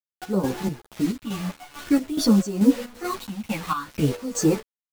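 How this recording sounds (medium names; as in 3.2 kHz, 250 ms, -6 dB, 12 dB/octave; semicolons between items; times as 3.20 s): phasing stages 6, 0.5 Hz, lowest notch 380–3500 Hz; a quantiser's noise floor 6-bit, dither none; chopped level 2.3 Hz, depth 65%, duty 55%; a shimmering, thickened sound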